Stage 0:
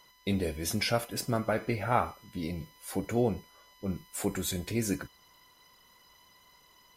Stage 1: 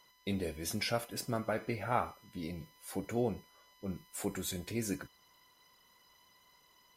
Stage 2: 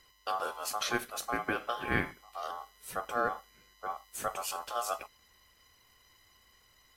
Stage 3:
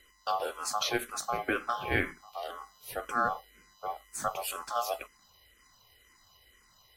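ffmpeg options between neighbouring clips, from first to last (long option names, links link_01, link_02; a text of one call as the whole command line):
ffmpeg -i in.wav -af "lowshelf=frequency=80:gain=-5.5,volume=-5dB" out.wav
ffmpeg -i in.wav -af "aeval=exprs='val(0)*sin(2*PI*950*n/s)':channel_layout=same,volume=4.5dB" out.wav
ffmpeg -i in.wav -filter_complex "[0:a]asplit=2[link_01][link_02];[link_02]afreqshift=-2[link_03];[link_01][link_03]amix=inputs=2:normalize=1,volume=4.5dB" out.wav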